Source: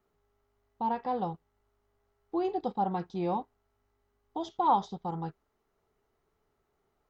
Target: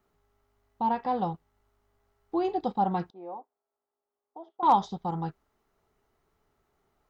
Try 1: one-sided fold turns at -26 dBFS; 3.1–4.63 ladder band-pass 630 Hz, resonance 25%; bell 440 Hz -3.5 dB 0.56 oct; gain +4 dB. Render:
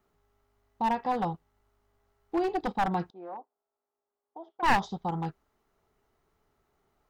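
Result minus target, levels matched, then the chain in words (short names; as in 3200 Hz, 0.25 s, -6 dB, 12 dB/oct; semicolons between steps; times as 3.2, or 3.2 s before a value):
one-sided fold: distortion +32 dB
one-sided fold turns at -17 dBFS; 3.1–4.63 ladder band-pass 630 Hz, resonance 25%; bell 440 Hz -3.5 dB 0.56 oct; gain +4 dB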